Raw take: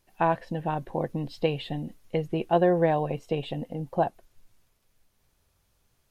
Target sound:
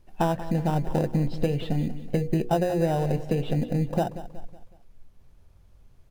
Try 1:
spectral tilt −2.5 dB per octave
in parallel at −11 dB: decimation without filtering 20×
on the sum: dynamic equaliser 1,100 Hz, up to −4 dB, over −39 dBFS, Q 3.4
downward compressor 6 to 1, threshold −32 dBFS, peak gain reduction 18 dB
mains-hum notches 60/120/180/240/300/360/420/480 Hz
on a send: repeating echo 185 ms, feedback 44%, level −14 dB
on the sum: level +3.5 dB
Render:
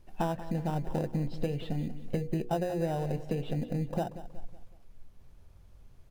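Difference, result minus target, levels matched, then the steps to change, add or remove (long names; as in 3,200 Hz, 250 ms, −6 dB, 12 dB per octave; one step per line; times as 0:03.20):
downward compressor: peak gain reduction +7 dB
change: downward compressor 6 to 1, threshold −23.5 dBFS, peak gain reduction 11 dB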